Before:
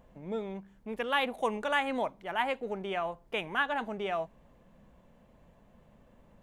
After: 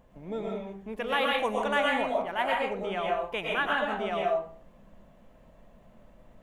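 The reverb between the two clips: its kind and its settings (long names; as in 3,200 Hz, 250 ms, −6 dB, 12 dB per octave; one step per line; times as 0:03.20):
comb and all-pass reverb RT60 0.48 s, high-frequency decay 0.6×, pre-delay 80 ms, DRR −2 dB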